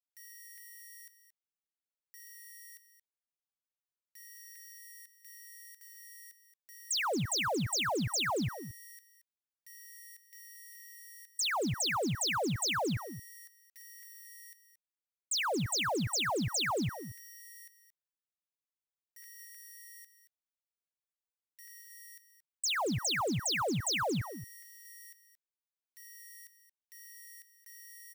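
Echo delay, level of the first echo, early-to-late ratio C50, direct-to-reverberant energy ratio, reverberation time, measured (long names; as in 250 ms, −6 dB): 226 ms, −12.0 dB, no reverb audible, no reverb audible, no reverb audible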